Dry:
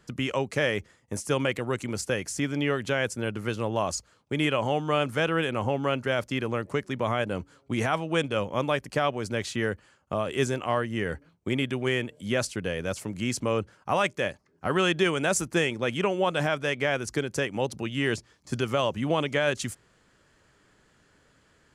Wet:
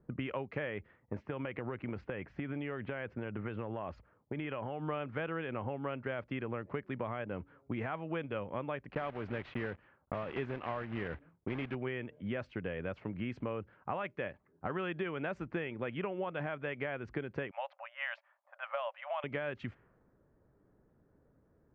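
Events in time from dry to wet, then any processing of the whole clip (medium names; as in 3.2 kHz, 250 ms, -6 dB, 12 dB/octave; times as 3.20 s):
1.27–4.88 s: compression 10:1, threshold -28 dBFS
8.94–11.75 s: block-companded coder 3-bit
17.51–19.24 s: brick-wall FIR high-pass 540 Hz
whole clip: level-controlled noise filter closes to 580 Hz, open at -25 dBFS; low-pass 2.5 kHz 24 dB/octave; compression, threshold -31 dBFS; trim -3 dB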